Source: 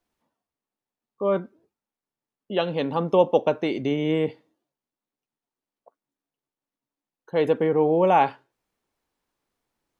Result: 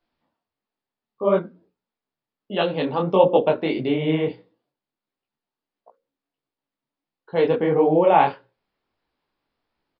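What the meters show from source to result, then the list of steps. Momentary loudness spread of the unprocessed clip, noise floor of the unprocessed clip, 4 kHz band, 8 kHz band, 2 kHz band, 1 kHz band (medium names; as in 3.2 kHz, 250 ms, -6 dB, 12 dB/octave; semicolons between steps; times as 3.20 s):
9 LU, under -85 dBFS, +3.0 dB, no reading, +3.0 dB, +2.5 dB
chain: resampled via 11.025 kHz; hum notches 60/120/180/240/300/360/420/480/540 Hz; detune thickener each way 53 cents; trim +6.5 dB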